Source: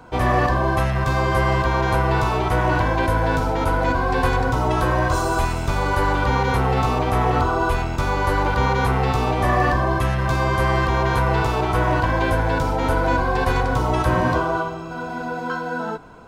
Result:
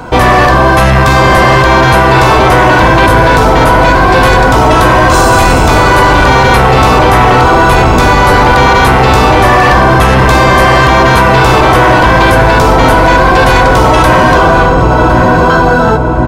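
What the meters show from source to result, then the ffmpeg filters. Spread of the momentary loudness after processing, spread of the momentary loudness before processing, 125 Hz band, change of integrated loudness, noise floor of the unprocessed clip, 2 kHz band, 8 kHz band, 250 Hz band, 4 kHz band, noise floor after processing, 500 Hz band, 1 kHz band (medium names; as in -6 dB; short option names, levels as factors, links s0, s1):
1 LU, 4 LU, +12.0 dB, +15.0 dB, -29 dBFS, +16.5 dB, +18.0 dB, +14.5 dB, +18.5 dB, -6 dBFS, +15.0 dB, +15.5 dB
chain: -filter_complex "[0:a]asplit=2[s0][s1];[s1]adelay=1057,lowpass=f=1100:p=1,volume=0.596,asplit=2[s2][s3];[s3]adelay=1057,lowpass=f=1100:p=1,volume=0.47,asplit=2[s4][s5];[s5]adelay=1057,lowpass=f=1100:p=1,volume=0.47,asplit=2[s6][s7];[s7]adelay=1057,lowpass=f=1100:p=1,volume=0.47,asplit=2[s8][s9];[s9]adelay=1057,lowpass=f=1100:p=1,volume=0.47,asplit=2[s10][s11];[s11]adelay=1057,lowpass=f=1100:p=1,volume=0.47[s12];[s0][s2][s4][s6][s8][s10][s12]amix=inputs=7:normalize=0,apsyclip=11.9,volume=0.841"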